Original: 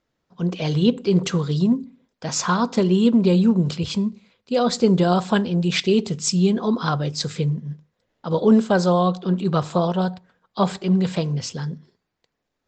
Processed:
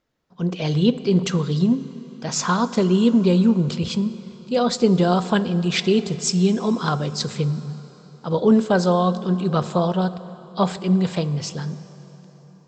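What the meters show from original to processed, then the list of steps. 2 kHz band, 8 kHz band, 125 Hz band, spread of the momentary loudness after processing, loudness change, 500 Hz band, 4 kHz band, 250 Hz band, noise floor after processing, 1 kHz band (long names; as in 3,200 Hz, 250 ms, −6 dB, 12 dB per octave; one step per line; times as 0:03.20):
0.0 dB, 0.0 dB, 0.0 dB, 12 LU, 0.0 dB, 0.0 dB, 0.0 dB, 0.0 dB, −48 dBFS, 0.0 dB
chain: dense smooth reverb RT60 4.5 s, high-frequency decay 0.75×, DRR 14.5 dB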